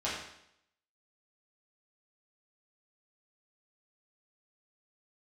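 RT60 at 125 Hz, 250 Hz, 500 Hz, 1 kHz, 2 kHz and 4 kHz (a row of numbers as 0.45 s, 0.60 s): 0.70 s, 0.75 s, 0.75 s, 0.75 s, 0.75 s, 0.75 s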